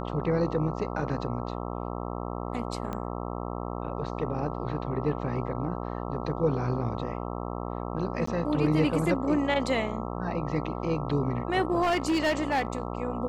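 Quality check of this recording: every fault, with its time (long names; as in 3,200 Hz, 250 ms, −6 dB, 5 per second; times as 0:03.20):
mains buzz 60 Hz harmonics 22 −34 dBFS
0:02.93: click −21 dBFS
0:08.26–0:08.27: drop-out 14 ms
0:11.82–0:12.87: clipping −21.5 dBFS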